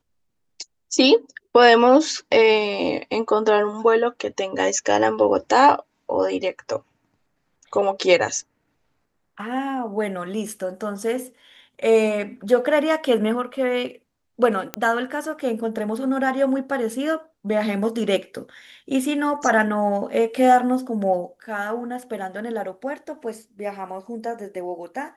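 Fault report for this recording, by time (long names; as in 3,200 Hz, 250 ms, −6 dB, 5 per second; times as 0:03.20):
0:14.74: click −9 dBFS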